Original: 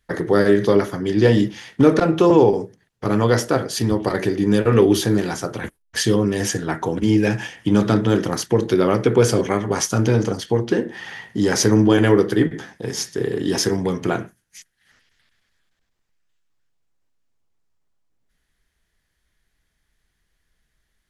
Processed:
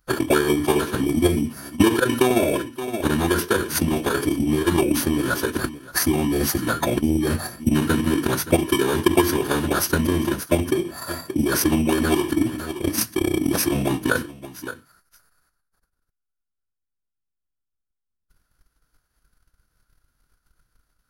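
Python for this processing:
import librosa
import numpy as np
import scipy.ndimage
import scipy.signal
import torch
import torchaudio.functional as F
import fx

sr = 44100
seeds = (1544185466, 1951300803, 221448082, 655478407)

p1 = fx.bit_reversed(x, sr, seeds[0], block=16)
p2 = fx.peak_eq(p1, sr, hz=1400.0, db=14.0, octaves=0.22)
p3 = p2 + fx.echo_single(p2, sr, ms=573, db=-18.5, dry=0)
p4 = fx.pitch_keep_formants(p3, sr, semitones=-5.5)
p5 = fx.transient(p4, sr, attack_db=11, sustain_db=-2)
p6 = fx.over_compress(p5, sr, threshold_db=-22.0, ratio=-1.0)
p7 = p5 + F.gain(torch.from_numpy(p6), 2.0).numpy()
y = F.gain(torch.from_numpy(p7), -9.5).numpy()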